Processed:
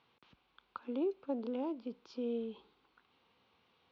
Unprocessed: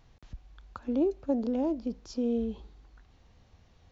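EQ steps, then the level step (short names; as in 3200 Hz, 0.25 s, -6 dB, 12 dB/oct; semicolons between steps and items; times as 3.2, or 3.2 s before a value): speaker cabinet 250–3600 Hz, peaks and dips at 310 Hz -3 dB, 620 Hz -9 dB, 1800 Hz -10 dB; low shelf 430 Hz -9.5 dB; bell 750 Hz -5 dB 0.24 oct; +1.5 dB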